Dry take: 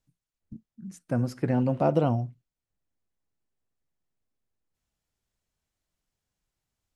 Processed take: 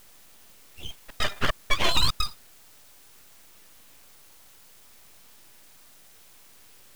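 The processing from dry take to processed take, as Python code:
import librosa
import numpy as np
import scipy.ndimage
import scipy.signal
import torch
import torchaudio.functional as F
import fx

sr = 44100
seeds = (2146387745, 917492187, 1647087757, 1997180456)

p1 = fx.octave_mirror(x, sr, pivot_hz=550.0)
p2 = fx.step_gate(p1, sr, bpm=150, pattern='x.xxx..xxx', floor_db=-60.0, edge_ms=4.5)
p3 = fx.quant_dither(p2, sr, seeds[0], bits=8, dither='triangular')
p4 = p2 + (p3 * librosa.db_to_amplitude(-11.5))
p5 = fx.filter_lfo_highpass(p4, sr, shape='sine', hz=0.61, low_hz=400.0, high_hz=1600.0, q=2.6)
p6 = np.abs(p5)
y = p6 * librosa.db_to_amplitude(7.0)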